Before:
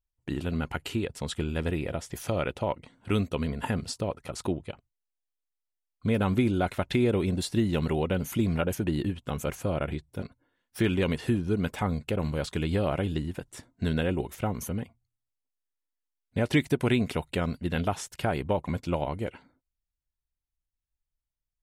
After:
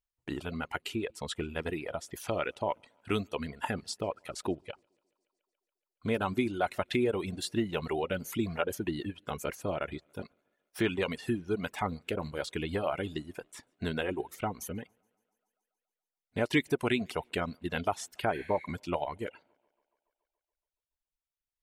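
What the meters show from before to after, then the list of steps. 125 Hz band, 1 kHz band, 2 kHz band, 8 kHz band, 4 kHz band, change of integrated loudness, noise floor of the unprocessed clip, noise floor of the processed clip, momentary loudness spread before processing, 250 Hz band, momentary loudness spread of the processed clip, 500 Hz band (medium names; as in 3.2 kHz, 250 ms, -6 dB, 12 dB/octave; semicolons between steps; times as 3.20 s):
-10.5 dB, -0.5 dB, -1.0 dB, -3.0 dB, -2.0 dB, -4.5 dB, under -85 dBFS, under -85 dBFS, 10 LU, -6.0 dB, 11 LU, -3.0 dB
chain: band-stop 530 Hz, Q 15; thinning echo 141 ms, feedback 65%, high-pass 150 Hz, level -24 dB; reverb removal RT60 1.1 s; tone controls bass -9 dB, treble -3 dB; spectral replace 18.37–18.63 s, 1.5–12 kHz both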